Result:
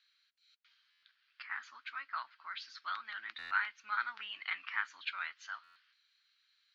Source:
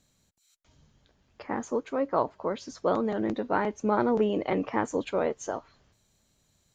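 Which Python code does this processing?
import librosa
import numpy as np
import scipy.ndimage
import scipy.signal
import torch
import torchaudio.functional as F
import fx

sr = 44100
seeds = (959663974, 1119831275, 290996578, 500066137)

y = scipy.signal.sosfilt(scipy.signal.ellip(3, 1.0, 50, [1400.0, 4500.0], 'bandpass', fs=sr, output='sos'), x)
y = fx.buffer_glitch(y, sr, at_s=(0.9, 3.38, 5.63), block=512, repeats=10)
y = F.gain(torch.from_numpy(y), 3.0).numpy()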